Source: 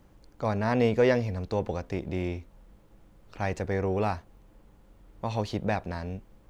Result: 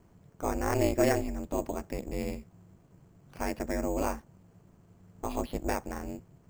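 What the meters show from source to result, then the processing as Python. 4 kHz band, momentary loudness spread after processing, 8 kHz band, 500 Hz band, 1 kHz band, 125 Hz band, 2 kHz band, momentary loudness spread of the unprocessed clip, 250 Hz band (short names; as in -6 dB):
-3.0 dB, 13 LU, n/a, -4.0 dB, -2.0 dB, -7.0 dB, -4.0 dB, 13 LU, -2.0 dB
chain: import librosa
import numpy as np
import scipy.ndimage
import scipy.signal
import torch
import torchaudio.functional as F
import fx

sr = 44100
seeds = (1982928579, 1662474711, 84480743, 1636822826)

y = x * np.sin(2.0 * np.pi * 140.0 * np.arange(len(x)) / sr)
y = np.repeat(scipy.signal.resample_poly(y, 1, 6), 6)[:len(y)]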